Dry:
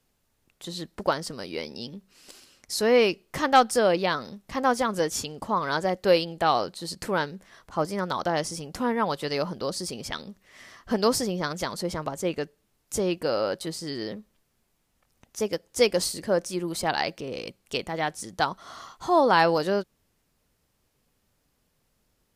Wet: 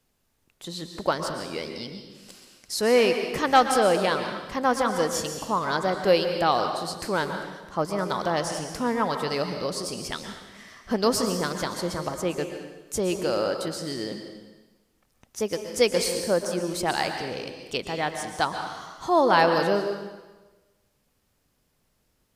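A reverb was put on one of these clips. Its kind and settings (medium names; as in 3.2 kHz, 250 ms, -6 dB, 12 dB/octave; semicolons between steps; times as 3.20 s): plate-style reverb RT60 1.2 s, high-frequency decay 0.95×, pre-delay 105 ms, DRR 5.5 dB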